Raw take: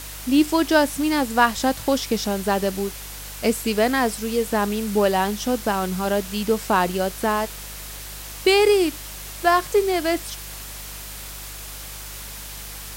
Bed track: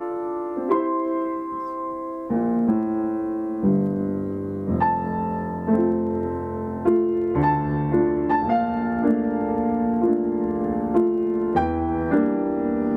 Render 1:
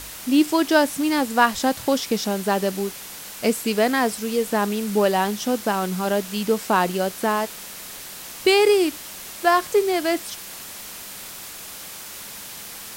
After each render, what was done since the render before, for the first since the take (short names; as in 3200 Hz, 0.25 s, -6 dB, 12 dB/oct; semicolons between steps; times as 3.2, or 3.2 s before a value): de-hum 50 Hz, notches 3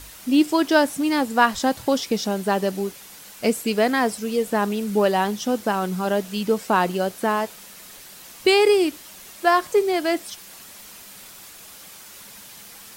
denoiser 7 dB, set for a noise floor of -37 dBFS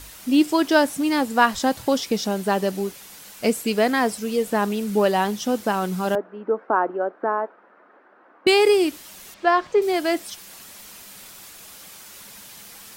6.15–8.47 Chebyshev band-pass 280–1500 Hz, order 3; 9.34–9.82 air absorption 150 m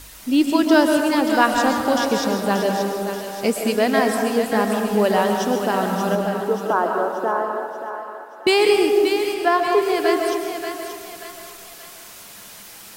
thinning echo 0.582 s, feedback 47%, high-pass 610 Hz, level -7 dB; digital reverb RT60 1.9 s, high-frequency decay 0.3×, pre-delay 90 ms, DRR 3 dB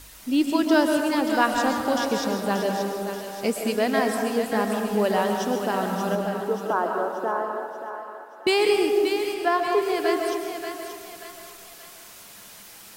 gain -4.5 dB